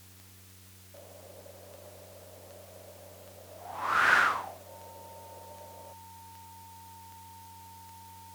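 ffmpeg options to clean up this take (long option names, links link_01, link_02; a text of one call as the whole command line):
ffmpeg -i in.wav -af "adeclick=threshold=4,bandreject=frequency=93.7:width_type=h:width=4,bandreject=frequency=187.4:width_type=h:width=4,bandreject=frequency=281.1:width_type=h:width=4,bandreject=frequency=374.8:width_type=h:width=4,bandreject=frequency=468.5:width_type=h:width=4,bandreject=frequency=910:width=30,afftdn=noise_reduction=26:noise_floor=-53" out.wav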